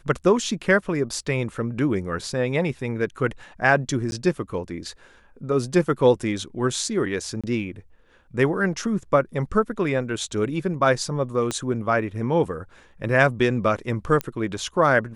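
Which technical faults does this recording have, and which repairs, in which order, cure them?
0:04.11–0:04.12: drop-out 11 ms
0:07.41–0:07.44: drop-out 26 ms
0:11.51: click −12 dBFS
0:14.21: click −11 dBFS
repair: click removal
repair the gap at 0:04.11, 11 ms
repair the gap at 0:07.41, 26 ms

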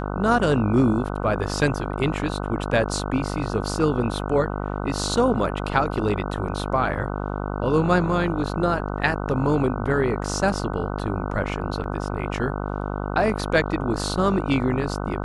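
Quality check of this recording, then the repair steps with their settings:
mains buzz 50 Hz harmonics 30 −28 dBFS
0:11.84: drop-out 3.7 ms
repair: hum removal 50 Hz, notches 30
repair the gap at 0:11.84, 3.7 ms

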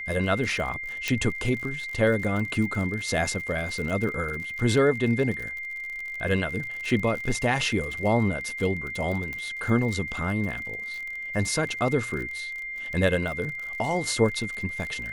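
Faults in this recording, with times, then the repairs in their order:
surface crackle 48 per second −32 dBFS
whistle 2,100 Hz −32 dBFS
0:01.08: click −11 dBFS
0:09.33: click
0:11.69: drop-out 2.9 ms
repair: click removal
notch filter 2,100 Hz, Q 30
repair the gap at 0:11.69, 2.9 ms

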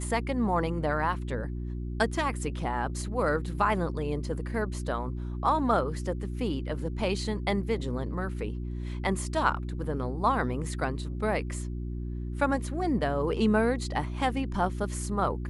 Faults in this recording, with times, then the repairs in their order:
mains hum 60 Hz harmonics 6 −34 dBFS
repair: hum removal 60 Hz, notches 6

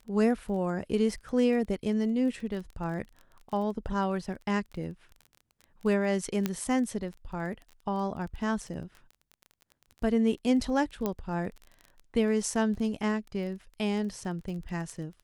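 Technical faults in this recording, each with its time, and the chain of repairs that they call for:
surface crackle 21 per second −38 dBFS
0:06.46: click −14 dBFS
0:11.06: click −16 dBFS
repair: click removal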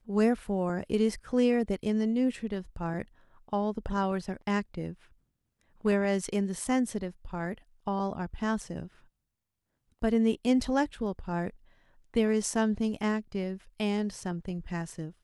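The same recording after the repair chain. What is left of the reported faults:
0:11.06: click

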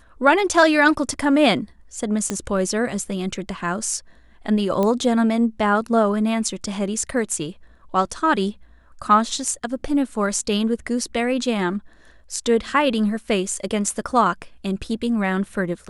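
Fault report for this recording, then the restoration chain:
0:02.30: click −9 dBFS
0:04.83: click −10 dBFS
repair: click removal

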